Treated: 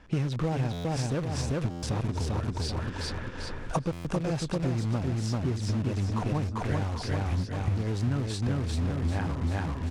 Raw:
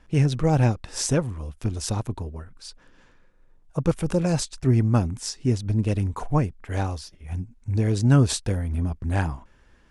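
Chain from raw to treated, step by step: recorder AGC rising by 14 dB/s; HPF 45 Hz 6 dB/oct; on a send: feedback echo 0.393 s, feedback 41%, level -3.5 dB; on the sum: compressor 10:1, threshold -27 dBFS, peak gain reduction 16.5 dB; dynamic EQ 6600 Hz, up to -4 dB, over -48 dBFS, Q 1.2; in parallel at -11 dB: wrapped overs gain 30.5 dB; on the sum: air absorption 67 m; stuck buffer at 0.72/1.7/3.92, samples 512, times 10; gain +2 dB

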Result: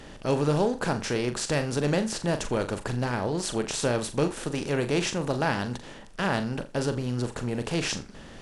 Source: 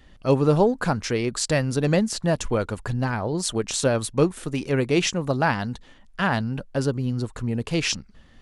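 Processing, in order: per-bin compression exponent 0.6; flutter echo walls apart 7 m, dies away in 0.25 s; gain -8 dB

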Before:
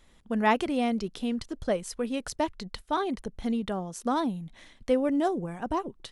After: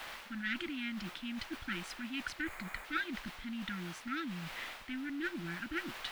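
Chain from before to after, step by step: one diode to ground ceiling -27 dBFS; FFT band-reject 360–1300 Hz; in parallel at -8 dB: requantised 6-bit, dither triangular; on the sum: spectral gain 2.41–2.85, 2500–6400 Hz -10 dB; reverse; compressor, threshold -35 dBFS, peak gain reduction 12 dB; reverse; three-band isolator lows -13 dB, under 580 Hz, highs -22 dB, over 3400 Hz; gain +7.5 dB

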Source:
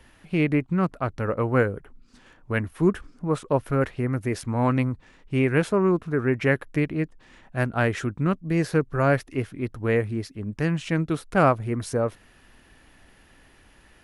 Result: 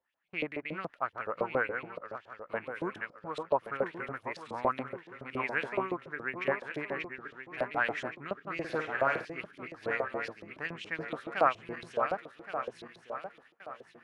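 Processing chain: regenerating reverse delay 0.56 s, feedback 58%, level -6 dB; LFO band-pass saw up 7.1 Hz 550–4000 Hz; gate with hold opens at -48 dBFS; 8.56–9.25 flutter echo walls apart 8.9 m, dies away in 0.35 s

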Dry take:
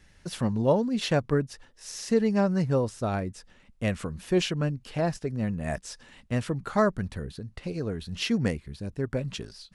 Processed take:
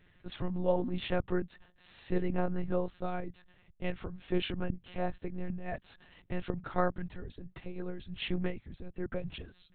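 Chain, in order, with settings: wow and flutter 26 cents; monotone LPC vocoder at 8 kHz 180 Hz; gain -6 dB

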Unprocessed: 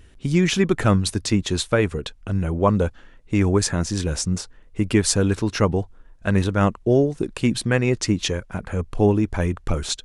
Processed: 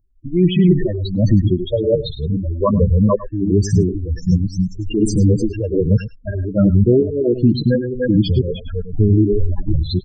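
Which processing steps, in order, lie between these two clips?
reverse delay 0.263 s, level -2 dB; gate with hold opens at -33 dBFS; low shelf 92 Hz +7.5 dB; loudest bins only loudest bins 8; echo 0.105 s -14.5 dB; maximiser +10 dB; photocell phaser 1.3 Hz; gain -2 dB

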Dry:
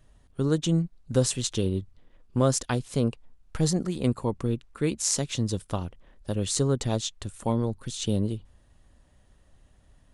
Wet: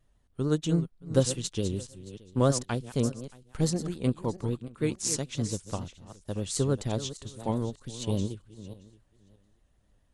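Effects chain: regenerating reverse delay 0.312 s, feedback 40%, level -9.5 dB; vibrato 6.9 Hz 74 cents; upward expander 1.5:1, over -37 dBFS

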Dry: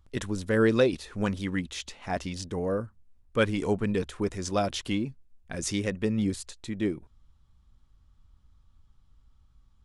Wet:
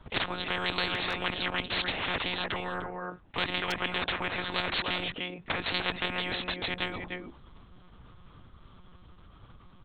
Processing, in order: HPF 110 Hz 24 dB/oct; high shelf 2900 Hz -4 dB; monotone LPC vocoder at 8 kHz 180 Hz; speakerphone echo 0.3 s, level -14 dB; spectral compressor 10:1; gain -2.5 dB

